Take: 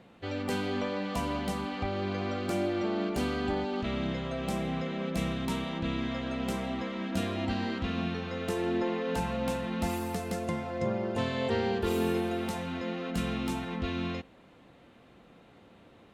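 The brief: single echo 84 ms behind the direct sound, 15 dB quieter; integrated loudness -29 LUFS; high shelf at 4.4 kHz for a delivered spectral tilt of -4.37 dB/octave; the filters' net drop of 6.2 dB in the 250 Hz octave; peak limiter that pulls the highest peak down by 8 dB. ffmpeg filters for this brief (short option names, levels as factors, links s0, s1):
-af "equalizer=f=250:t=o:g=-8.5,highshelf=f=4400:g=-4.5,alimiter=level_in=1.68:limit=0.0631:level=0:latency=1,volume=0.596,aecho=1:1:84:0.178,volume=2.66"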